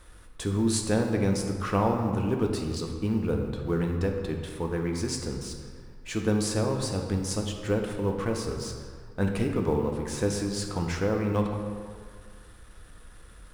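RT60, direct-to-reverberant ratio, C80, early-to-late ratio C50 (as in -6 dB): 1.9 s, 2.0 dB, 6.0 dB, 4.5 dB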